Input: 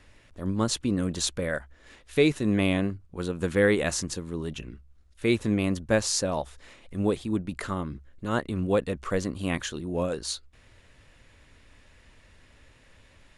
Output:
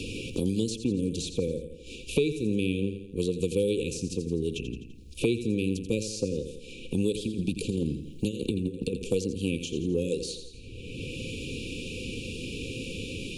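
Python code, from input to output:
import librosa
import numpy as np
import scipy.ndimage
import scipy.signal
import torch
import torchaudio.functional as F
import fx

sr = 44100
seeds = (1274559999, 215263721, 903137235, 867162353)

y = fx.dynamic_eq(x, sr, hz=460.0, q=1.7, threshold_db=-38.0, ratio=4.0, max_db=5)
y = fx.over_compress(y, sr, threshold_db=-30.0, ratio=-0.5, at=(7.12, 8.94))
y = fx.brickwall_bandstop(y, sr, low_hz=530.0, high_hz=2300.0)
y = fx.echo_feedback(y, sr, ms=84, feedback_pct=40, wet_db=-11)
y = fx.band_squash(y, sr, depth_pct=100)
y = y * 10.0 ** (-2.5 / 20.0)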